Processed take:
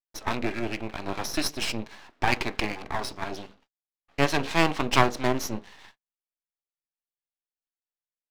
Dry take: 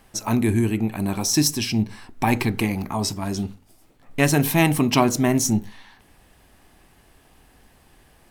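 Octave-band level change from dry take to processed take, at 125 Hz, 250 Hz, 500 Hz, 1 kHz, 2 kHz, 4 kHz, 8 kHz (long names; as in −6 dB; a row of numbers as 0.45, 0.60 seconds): −11.5, −10.5, −4.0, −1.5, −1.0, −3.5, −12.0 decibels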